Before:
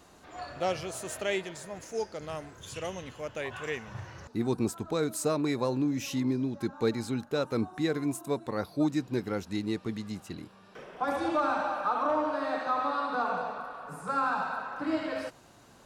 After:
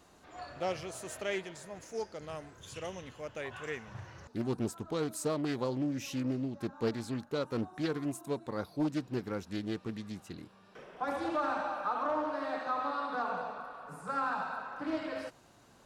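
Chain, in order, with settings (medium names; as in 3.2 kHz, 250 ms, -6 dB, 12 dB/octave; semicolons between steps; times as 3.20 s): loudspeaker Doppler distortion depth 0.37 ms; trim -4.5 dB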